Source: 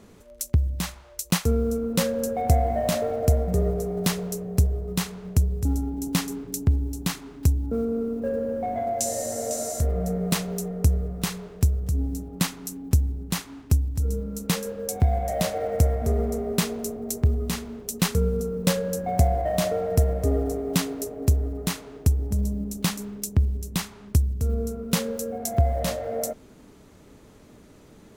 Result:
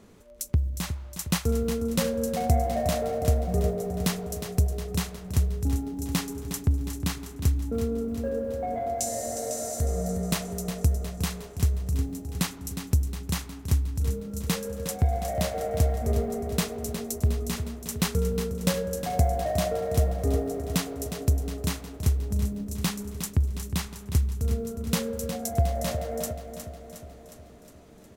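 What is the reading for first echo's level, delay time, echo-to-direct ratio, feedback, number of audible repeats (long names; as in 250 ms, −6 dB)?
−9.5 dB, 361 ms, −7.5 dB, 59%, 6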